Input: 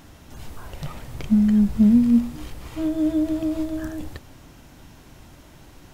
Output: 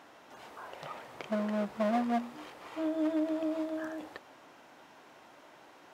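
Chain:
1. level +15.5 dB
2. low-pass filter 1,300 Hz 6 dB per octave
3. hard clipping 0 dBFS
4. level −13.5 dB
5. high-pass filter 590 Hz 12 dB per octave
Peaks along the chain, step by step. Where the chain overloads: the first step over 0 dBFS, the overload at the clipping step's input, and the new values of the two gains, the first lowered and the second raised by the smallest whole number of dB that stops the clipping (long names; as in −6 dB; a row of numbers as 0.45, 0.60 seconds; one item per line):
+7.5, +7.5, 0.0, −13.5, −21.0 dBFS
step 1, 7.5 dB
step 1 +7.5 dB, step 4 −5.5 dB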